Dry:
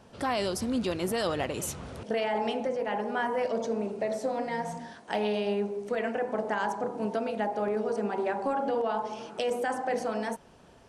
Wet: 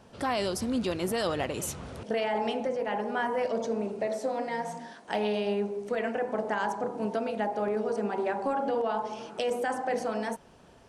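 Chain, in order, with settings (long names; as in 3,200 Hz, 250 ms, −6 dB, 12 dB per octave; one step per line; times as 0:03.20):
0:04.07–0:05.05: high-pass filter 200 Hz 12 dB per octave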